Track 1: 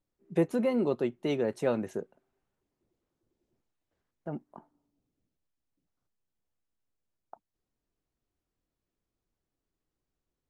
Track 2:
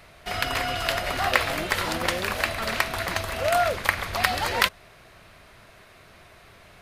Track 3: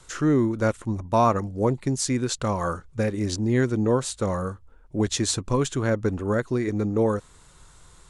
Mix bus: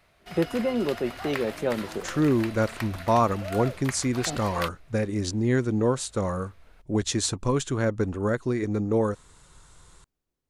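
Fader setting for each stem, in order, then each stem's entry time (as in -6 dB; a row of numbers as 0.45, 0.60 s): +1.5, -12.5, -1.5 dB; 0.00, 0.00, 1.95 s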